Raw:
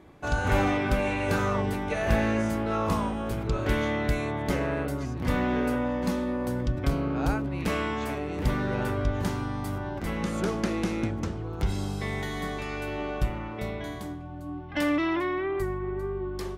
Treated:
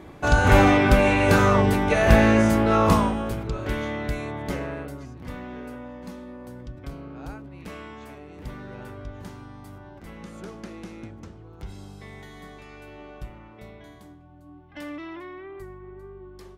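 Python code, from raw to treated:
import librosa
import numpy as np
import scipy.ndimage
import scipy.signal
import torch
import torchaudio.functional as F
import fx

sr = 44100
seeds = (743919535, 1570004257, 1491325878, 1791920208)

y = fx.gain(x, sr, db=fx.line((2.93, 8.5), (3.54, -2.0), (4.54, -2.0), (5.41, -11.0)))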